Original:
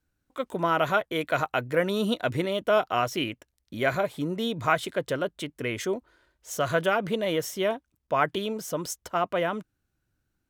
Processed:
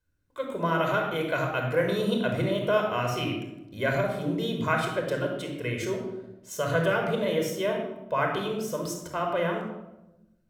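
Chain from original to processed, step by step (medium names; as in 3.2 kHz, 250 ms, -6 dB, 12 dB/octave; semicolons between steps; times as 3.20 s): simulated room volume 3700 m³, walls furnished, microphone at 5.1 m; trim -5.5 dB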